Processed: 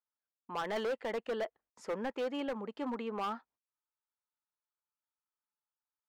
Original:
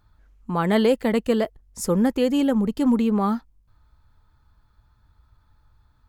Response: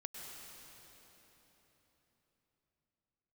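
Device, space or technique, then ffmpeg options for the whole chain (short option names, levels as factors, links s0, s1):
walkie-talkie: -af "highpass=550,lowpass=2500,asoftclip=type=hard:threshold=0.0562,agate=range=0.0562:threshold=0.001:ratio=16:detection=peak,volume=0.501"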